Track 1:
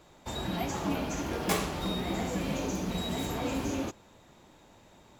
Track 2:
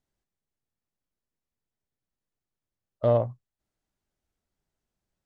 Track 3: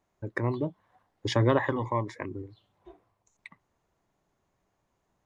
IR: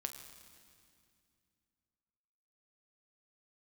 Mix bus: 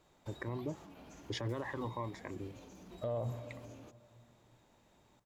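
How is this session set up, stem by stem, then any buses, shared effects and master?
-11.0 dB, 0.00 s, no send, limiter -26 dBFS, peak gain reduction 11 dB; compressor, threshold -41 dBFS, peak gain reduction 10 dB
-2.5 dB, 0.00 s, send -4 dB, limiter -18.5 dBFS, peak gain reduction 7 dB
-5.0 dB, 0.05 s, no send, compressor 1.5:1, threshold -35 dBFS, peak gain reduction 6.5 dB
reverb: on, RT60 2.4 s, pre-delay 7 ms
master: limiter -28.5 dBFS, peak gain reduction 10.5 dB

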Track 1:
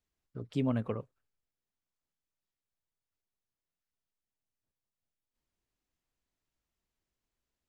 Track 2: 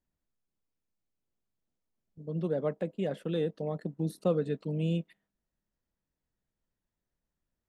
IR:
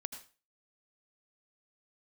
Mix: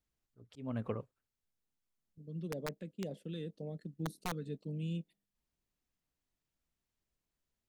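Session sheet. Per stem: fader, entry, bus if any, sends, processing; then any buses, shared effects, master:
-2.5 dB, 0.00 s, no send, auto swell 0.307 s
-7.0 dB, 0.00 s, no send, phaser stages 2, 2 Hz, lowest notch 730–1500 Hz; wrapped overs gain 23 dB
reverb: off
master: dry

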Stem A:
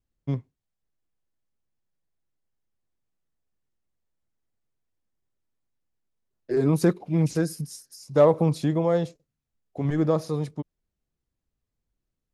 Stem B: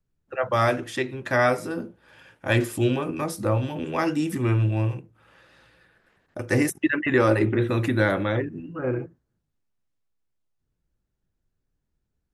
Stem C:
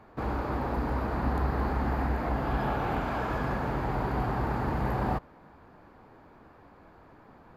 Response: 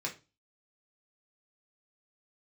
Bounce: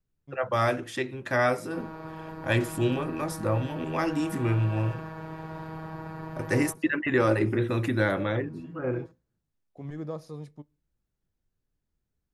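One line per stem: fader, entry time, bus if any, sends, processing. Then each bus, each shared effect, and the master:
-13.5 dB, 0.00 s, send -20 dB, auto duck -18 dB, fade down 0.80 s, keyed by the second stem
-3.5 dB, 0.00 s, no send, dry
-5.0 dB, 1.55 s, no send, robotiser 159 Hz; notch comb 260 Hz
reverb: on, RT60 0.30 s, pre-delay 3 ms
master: dry

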